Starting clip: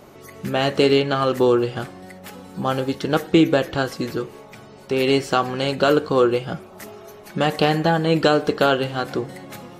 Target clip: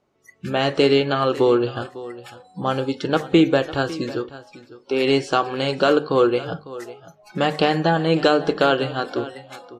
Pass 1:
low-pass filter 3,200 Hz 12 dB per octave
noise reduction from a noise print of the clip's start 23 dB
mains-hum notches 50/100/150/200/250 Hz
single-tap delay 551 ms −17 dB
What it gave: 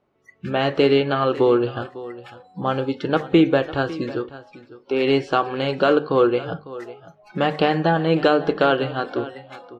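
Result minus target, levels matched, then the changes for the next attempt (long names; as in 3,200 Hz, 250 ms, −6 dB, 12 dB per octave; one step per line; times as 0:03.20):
8,000 Hz band −11.5 dB
change: low-pass filter 7,300 Hz 12 dB per octave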